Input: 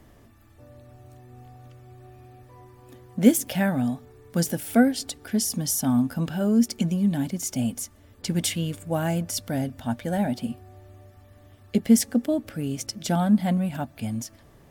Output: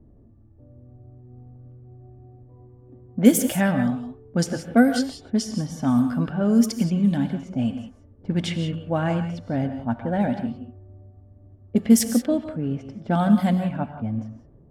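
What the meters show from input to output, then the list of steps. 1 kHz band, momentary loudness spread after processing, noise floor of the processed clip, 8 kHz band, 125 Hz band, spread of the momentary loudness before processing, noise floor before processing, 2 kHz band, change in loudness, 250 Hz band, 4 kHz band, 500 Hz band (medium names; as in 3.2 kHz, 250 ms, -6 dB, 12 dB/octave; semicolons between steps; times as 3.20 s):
+3.0 dB, 12 LU, -52 dBFS, -2.5 dB, +2.5 dB, 12 LU, -53 dBFS, +2.5 dB, +2.0 dB, +2.5 dB, -1.5 dB, +2.5 dB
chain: level-controlled noise filter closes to 340 Hz, open at -16.5 dBFS; dynamic bell 1.2 kHz, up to +4 dB, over -48 dBFS, Q 4.3; gated-style reverb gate 200 ms rising, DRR 8.5 dB; trim +2 dB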